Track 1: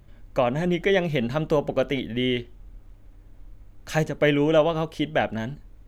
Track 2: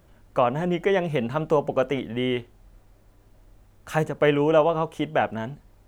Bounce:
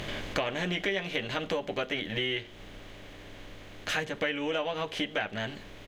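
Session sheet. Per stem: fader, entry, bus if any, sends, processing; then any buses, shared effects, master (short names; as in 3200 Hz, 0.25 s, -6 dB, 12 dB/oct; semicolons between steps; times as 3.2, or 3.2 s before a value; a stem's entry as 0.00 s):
+0.5 dB, 0.00 s, no send, per-bin compression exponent 0.6; bell 3700 Hz +13.5 dB 2 oct; auto duck -10 dB, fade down 1.90 s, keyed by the second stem
-1.5 dB, 11 ms, no send, band shelf 2500 Hz +12 dB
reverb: off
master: compressor 5:1, threshold -29 dBFS, peak gain reduction 16 dB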